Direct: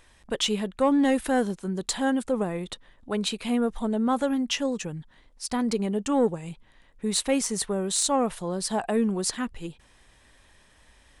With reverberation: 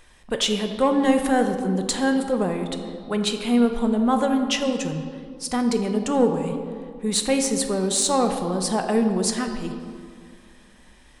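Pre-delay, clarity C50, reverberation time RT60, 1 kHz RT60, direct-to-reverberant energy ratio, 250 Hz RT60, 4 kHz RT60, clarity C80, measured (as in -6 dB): 3 ms, 7.0 dB, 2.0 s, 2.0 s, 5.0 dB, 2.5 s, 1.3 s, 8.0 dB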